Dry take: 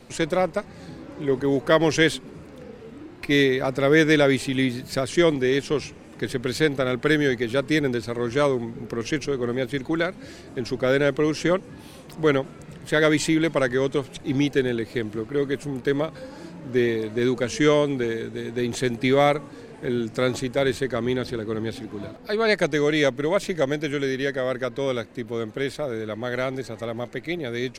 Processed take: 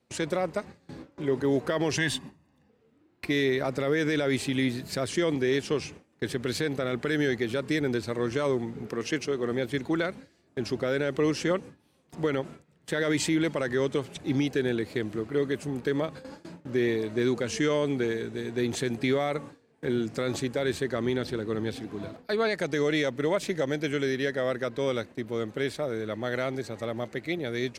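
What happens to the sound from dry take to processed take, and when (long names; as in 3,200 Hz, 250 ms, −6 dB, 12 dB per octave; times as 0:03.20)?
0:01.97–0:02.70: comb filter 1.1 ms, depth 73%
0:08.88–0:09.52: high-pass filter 180 Hz 6 dB per octave
whole clip: noise gate with hold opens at −29 dBFS; high-pass filter 59 Hz; brickwall limiter −14 dBFS; level −2.5 dB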